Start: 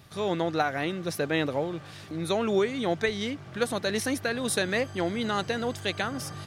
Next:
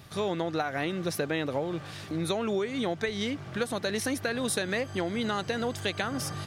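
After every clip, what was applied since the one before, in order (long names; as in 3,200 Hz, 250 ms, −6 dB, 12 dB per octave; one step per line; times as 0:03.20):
downward compressor, threshold −29 dBFS, peak gain reduction 9 dB
level +3 dB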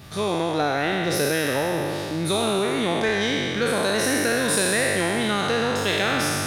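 peak hold with a decay on every bin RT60 2.48 s
in parallel at −9 dB: soft clipping −25.5 dBFS, distortion −11 dB
on the sum: level +1.5 dB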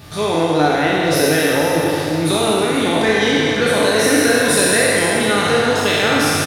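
single-tap delay 477 ms −11 dB
feedback delay network reverb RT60 1.4 s, low-frequency decay 0.8×, high-frequency decay 0.9×, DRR 0.5 dB
level +4 dB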